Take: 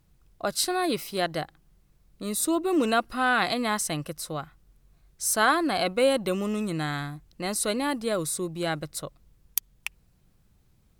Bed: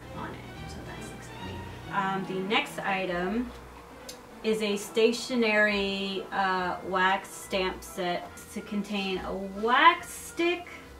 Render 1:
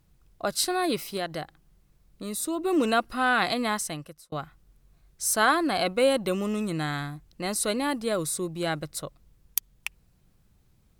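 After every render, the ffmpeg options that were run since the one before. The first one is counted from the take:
-filter_complex "[0:a]asettb=1/sr,asplit=3[s0][s1][s2];[s0]atrim=end=1.174[s3];[s1]atrim=start=1.17:end=2.59,asetpts=PTS-STARTPTS,afade=t=in:d=0.004:c=qsin,afade=t=out:st=1.416:d=0.004:c=qsin,acompressor=threshold=0.02:ratio=1.5:attack=3.2:release=140:knee=1:detection=peak[s4];[s2]atrim=start=2.586[s5];[s3][s4]acrossfade=d=0.004:c1=hsin:c2=qsin[s6];[s6][s5]acrossfade=d=0.004:c1=qsin:c2=hsin,asplit=2[s7][s8];[s7]atrim=end=4.32,asetpts=PTS-STARTPTS,afade=t=out:st=3.66:d=0.66[s9];[s8]atrim=start=4.32,asetpts=PTS-STARTPTS,afade=t=in:d=0.004:c=hsin[s10];[s9][s10]concat=n=2:v=0:a=1"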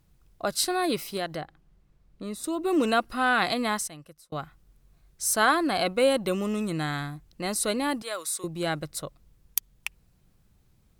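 -filter_complex "[0:a]asettb=1/sr,asplit=3[s0][s1][s2];[s0]atrim=end=1.364[s3];[s1]atrim=start=1.36:end=2.44,asetpts=PTS-STARTPTS,afade=t=in:d=0.004:c=qsin,afade=t=out:st=1.076:d=0.004:c=qsin,lowpass=f=2700:p=1[s4];[s2]atrim=start=2.436[s5];[s3][s4]acrossfade=d=0.004:c1=hsin:c2=qsin[s6];[s6][s5]acrossfade=d=0.004:c1=qsin:c2=hsin,asettb=1/sr,asplit=3[s7][s8][s9];[s7]atrim=end=8.024[s10];[s8]atrim=start=8.02:end=8.44,asetpts=PTS-STARTPTS,afade=t=in:d=0.004:c=qsin,afade=t=out:st=0.416:d=0.004:c=qsin,highpass=840[s11];[s9]atrim=start=8.436[s12];[s10][s11]acrossfade=d=0.004:c1=hsin:c2=qsin[s13];[s13][s12]acrossfade=d=0.004:c1=qsin:c2=hsin,asplit=2[s14][s15];[s14]atrim=end=3.88,asetpts=PTS-STARTPTS,afade=t=out:st=3.876:d=0.004:c=hsin:silence=0.251189[s16];[s15]atrim=start=3.88,asetpts=PTS-STARTPTS,afade=t=in:d=0.53:silence=0.251189[s17];[s16][s17]concat=n=2:v=0:a=1"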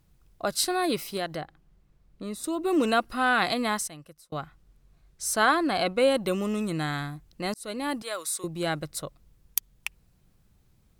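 -filter_complex "[0:a]asettb=1/sr,asplit=3[s0][s1][s2];[s0]atrim=end=4.394[s3];[s1]atrim=start=4.39:end=6.15,asetpts=PTS-STARTPTS,afade=t=in:d=0.004:c=qsin,afade=t=out:st=1.756:d=0.004:c=qsin,highshelf=f=9300:g=-7.5[s4];[s2]atrim=start=6.146[s5];[s3][s4]acrossfade=d=0.004:c1=hsin:c2=qsin[s6];[s6][s5]acrossfade=d=0.004:c1=qsin:c2=hsin,asplit=2[s7][s8];[s7]atrim=end=7.54,asetpts=PTS-STARTPTS,afade=t=out:st=7.536:d=0.004:c=hsin[s9];[s8]atrim=start=7.54,asetpts=PTS-STARTPTS,afade=t=in:d=0.62:c=qsin[s10];[s9][s10]concat=n=2:v=0:a=1"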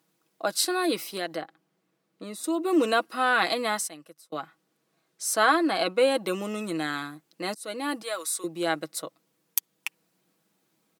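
-af "highpass=f=230:w=0.5412,highpass=f=230:w=1.3066,aecho=1:1:6.2:0.46"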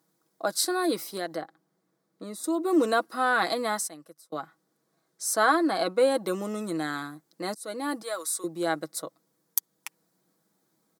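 -af "equalizer=f=2700:t=o:w=0.6:g=-12.5"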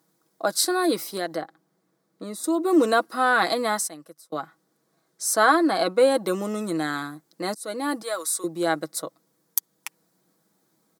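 -af "volume=1.58,alimiter=limit=0.794:level=0:latency=1"

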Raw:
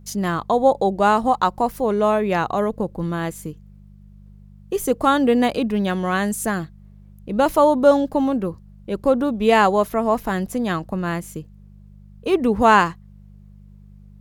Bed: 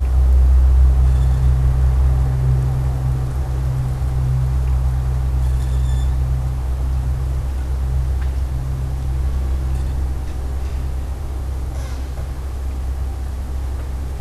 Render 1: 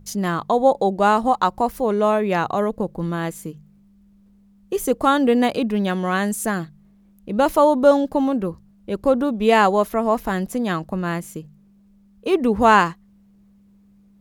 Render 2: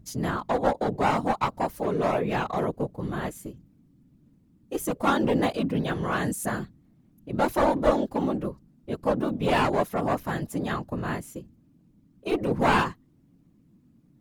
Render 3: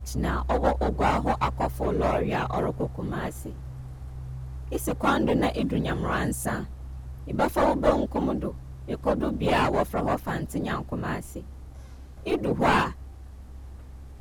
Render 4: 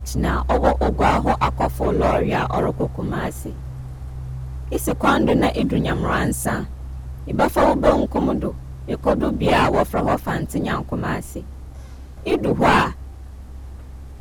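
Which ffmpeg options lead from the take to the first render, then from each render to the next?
-af "bandreject=f=50:t=h:w=4,bandreject=f=100:t=h:w=4,bandreject=f=150:t=h:w=4"
-af "aeval=exprs='clip(val(0),-1,0.133)':c=same,afftfilt=real='hypot(re,im)*cos(2*PI*random(0))':imag='hypot(re,im)*sin(2*PI*random(1))':win_size=512:overlap=0.75"
-filter_complex "[1:a]volume=0.112[s0];[0:a][s0]amix=inputs=2:normalize=0"
-af "volume=2.11,alimiter=limit=0.708:level=0:latency=1"

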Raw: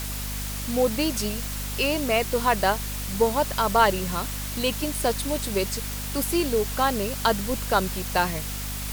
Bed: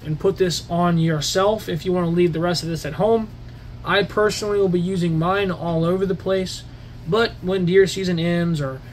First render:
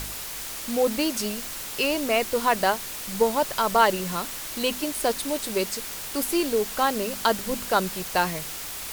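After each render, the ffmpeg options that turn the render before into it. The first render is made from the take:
-af "bandreject=f=50:t=h:w=4,bandreject=f=100:t=h:w=4,bandreject=f=150:t=h:w=4,bandreject=f=200:t=h:w=4,bandreject=f=250:t=h:w=4"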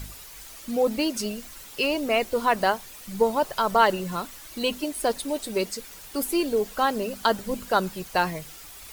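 -af "afftdn=nr=11:nf=-35"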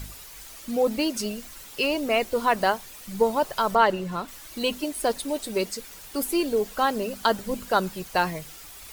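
-filter_complex "[0:a]asettb=1/sr,asplit=3[s0][s1][s2];[s0]atrim=end=3.754[s3];[s1]atrim=start=3.75:end=4.28,asetpts=PTS-STARTPTS,afade=t=in:d=0.004:c=qsin,afade=t=out:st=0.526:d=0.004:c=qsin,highshelf=f=5500:g=-11[s4];[s2]atrim=start=4.276[s5];[s3][s4]acrossfade=d=0.004:c1=hsin:c2=qsin[s6];[s6][s5]acrossfade=d=0.004:c1=qsin:c2=hsin"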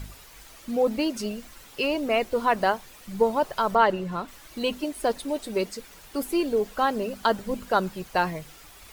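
-af "highshelf=f=4100:g=-8"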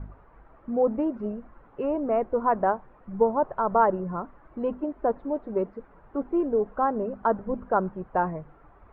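-af "lowpass=f=1300:w=0.5412,lowpass=f=1300:w=1.3066"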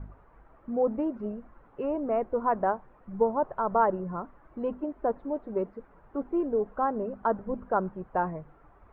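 -af "volume=0.708"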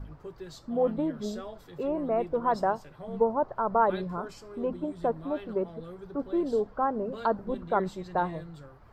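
-filter_complex "[1:a]volume=0.0631[s0];[0:a][s0]amix=inputs=2:normalize=0"

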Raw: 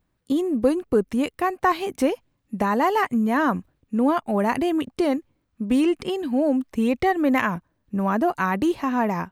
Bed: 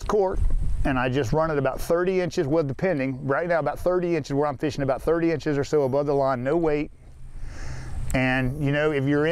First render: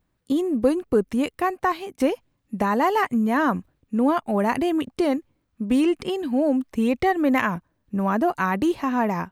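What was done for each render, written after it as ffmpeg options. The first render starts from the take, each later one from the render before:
-filter_complex "[0:a]asplit=2[s0][s1];[s0]atrim=end=2,asetpts=PTS-STARTPTS,afade=t=out:st=1.51:d=0.49:silence=0.251189[s2];[s1]atrim=start=2,asetpts=PTS-STARTPTS,afade=t=in:d=0.004:c=hsin:silence=0.251189[s3];[s2][s3]concat=n=2:v=0:a=1"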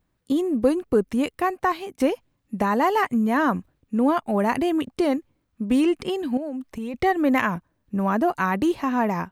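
-filter_complex "[0:a]asettb=1/sr,asplit=3[s0][s1][s2];[s0]atrim=end=6.374[s3];[s1]atrim=start=6.37:end=6.94,asetpts=PTS-STARTPTS,afade=t=in:d=0.004:c=qsin,afade=t=out:st=0.566:d=0.004:c=qsin,acompressor=threshold=0.0398:ratio=6:attack=3.2:release=140:knee=1:detection=peak[s4];[s2]atrim=start=6.936[s5];[s3][s4]acrossfade=d=0.004:c1=hsin:c2=qsin[s6];[s6][s5]acrossfade=d=0.004:c1=qsin:c2=hsin"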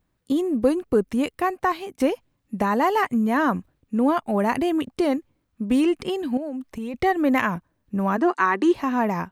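-filter_complex "[0:a]asplit=3[s0][s1][s2];[s0]afade=t=out:st=8.16:d=0.02[s3];[s1]highpass=f=250:w=0.5412,highpass=f=250:w=1.3066,equalizer=f=370:t=q:w=4:g=6,equalizer=f=610:t=q:w=4:g=-8,equalizer=f=1100:t=q:w=4:g=6,equalizer=f=1800:t=q:w=4:g=6,lowpass=f=8700:w=0.5412,lowpass=f=8700:w=1.3066,afade=t=in:st=8.16:d=0.02,afade=t=out:st=8.73:d=0.02[s4];[s2]afade=t=in:st=8.73:d=0.02[s5];[s3][s4][s5]amix=inputs=3:normalize=0"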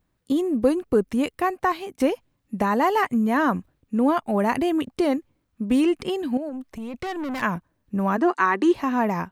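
-filter_complex "[0:a]asettb=1/sr,asplit=3[s0][s1][s2];[s0]atrim=end=6.494[s3];[s1]atrim=start=6.49:end=7.42,asetpts=PTS-STARTPTS,afade=t=in:d=0.004:c=qsin,afade=t=out:st=0.926:d=0.004:c=qsin,aeval=exprs='(tanh(22.4*val(0)+0.2)-tanh(0.2))/22.4':c=same[s4];[s2]atrim=start=7.416[s5];[s3][s4]acrossfade=d=0.004:c1=hsin:c2=qsin[s6];[s6][s5]acrossfade=d=0.004:c1=qsin:c2=hsin"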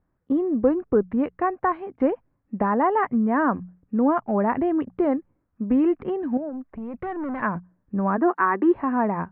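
-af "lowpass=f=1700:w=0.5412,lowpass=f=1700:w=1.3066,bandreject=f=60:t=h:w=6,bandreject=f=120:t=h:w=6,bandreject=f=180:t=h:w=6"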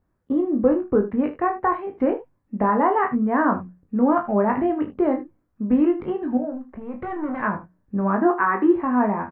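-filter_complex "[0:a]asplit=2[s0][s1];[s1]adelay=20,volume=0.501[s2];[s0][s2]amix=inputs=2:normalize=0,aecho=1:1:33|77:0.355|0.2"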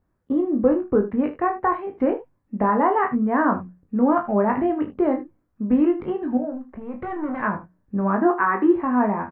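-af anull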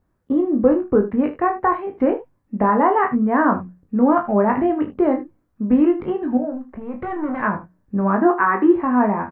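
-af "volume=1.41"

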